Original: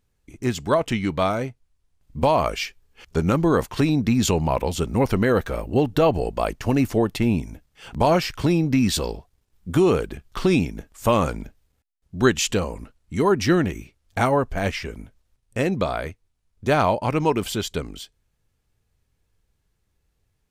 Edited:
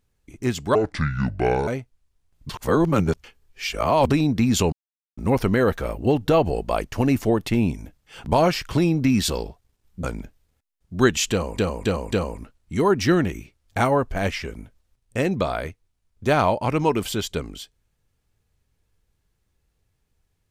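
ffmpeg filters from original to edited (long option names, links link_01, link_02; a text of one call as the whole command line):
ffmpeg -i in.wav -filter_complex "[0:a]asplit=11[link_01][link_02][link_03][link_04][link_05][link_06][link_07][link_08][link_09][link_10][link_11];[link_01]atrim=end=0.754[link_12];[link_02]atrim=start=0.75:end=1.36,asetpts=PTS-STARTPTS,asetrate=29106,aresample=44100,atrim=end_sample=40759,asetpts=PTS-STARTPTS[link_13];[link_03]atrim=start=1.356:end=2.182[link_14];[link_04]atrim=start=2.178:end=3.792,asetpts=PTS-STARTPTS,areverse[link_15];[link_05]atrim=start=3.788:end=4.41,asetpts=PTS-STARTPTS,afade=type=out:start_time=0.618:duration=0.004:curve=hsin[link_16];[link_06]atrim=start=4.41:end=4.86,asetpts=PTS-STARTPTS,volume=0[link_17];[link_07]atrim=start=4.86:end=9.722,asetpts=PTS-STARTPTS,afade=type=in:duration=0.004:curve=hsin[link_18];[link_08]atrim=start=11.248:end=12.802[link_19];[link_09]atrim=start=12.528:end=12.802[link_20];[link_10]atrim=start=12.528:end=12.802[link_21];[link_11]atrim=start=12.528[link_22];[link_12][link_13]acrossfade=duration=0.004:curve1=hsin:curve2=hsin[link_23];[link_23][link_14]acrossfade=duration=0.004:curve1=hsin:curve2=hsin[link_24];[link_24][link_15]acrossfade=duration=0.004:curve1=hsin:curve2=hsin[link_25];[link_16][link_17][link_18]concat=n=3:v=0:a=1[link_26];[link_25][link_26]acrossfade=duration=0.004:curve1=hsin:curve2=hsin[link_27];[link_27][link_19]acrossfade=duration=0.004:curve1=hsin:curve2=hsin[link_28];[link_28][link_20]acrossfade=duration=0.004:curve1=hsin:curve2=hsin[link_29];[link_29][link_21]acrossfade=duration=0.004:curve1=hsin:curve2=hsin[link_30];[link_30][link_22]acrossfade=duration=0.004:curve1=hsin:curve2=hsin" out.wav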